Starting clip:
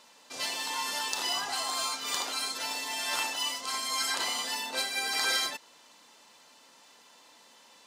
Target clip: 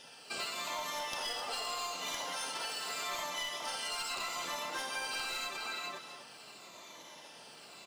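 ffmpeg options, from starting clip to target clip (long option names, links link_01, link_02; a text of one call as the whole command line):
ffmpeg -i in.wav -filter_complex "[0:a]afftfilt=real='re*pow(10,19/40*sin(2*PI*(1.1*log(max(b,1)*sr/1024/100)/log(2)-(-0.82)*(pts-256)/sr)))':imag='im*pow(10,19/40*sin(2*PI*(1.1*log(max(b,1)*sr/1024/100)/log(2)-(-0.82)*(pts-256)/sr)))':win_size=1024:overlap=0.75,asplit=2[link_01][link_02];[link_02]adelay=414,volume=-7dB,highshelf=frequency=4000:gain=-9.32[link_03];[link_01][link_03]amix=inputs=2:normalize=0,asplit=3[link_04][link_05][link_06];[link_05]asetrate=29433,aresample=44100,atempo=1.49831,volume=-1dB[link_07];[link_06]asetrate=52444,aresample=44100,atempo=0.840896,volume=-17dB[link_08];[link_04][link_07][link_08]amix=inputs=3:normalize=0,equalizer=frequency=1800:width=7.5:gain=-4.5,aeval=exprs='clip(val(0),-1,0.0841)':channel_layout=same,adynamicequalizer=threshold=0.00631:dfrequency=1200:dqfactor=1.5:tfrequency=1200:tqfactor=1.5:attack=5:release=100:ratio=0.375:range=2:mode=boostabove:tftype=bell,acompressor=threshold=-35dB:ratio=6,asplit=2[link_09][link_10];[link_10]aecho=0:1:260:0.299[link_11];[link_09][link_11]amix=inputs=2:normalize=0,acrusher=bits=7:mode=log:mix=0:aa=0.000001,volume=-2dB" out.wav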